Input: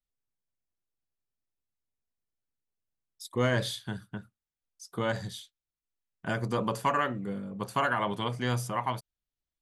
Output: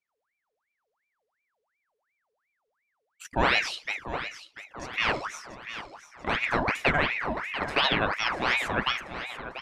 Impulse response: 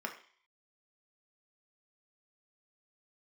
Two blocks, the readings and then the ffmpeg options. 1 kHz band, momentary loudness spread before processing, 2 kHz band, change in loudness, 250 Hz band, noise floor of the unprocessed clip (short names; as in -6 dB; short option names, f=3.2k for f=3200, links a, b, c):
+2.5 dB, 14 LU, +9.5 dB, +4.0 dB, -1.0 dB, under -85 dBFS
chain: -af "lowpass=5.6k,aecho=1:1:689|1378|2067|2756|3445|4134:0.251|0.141|0.0788|0.0441|0.0247|0.0138,aeval=exprs='val(0)*sin(2*PI*1400*n/s+1400*0.7/2.8*sin(2*PI*2.8*n/s))':c=same,volume=6dB"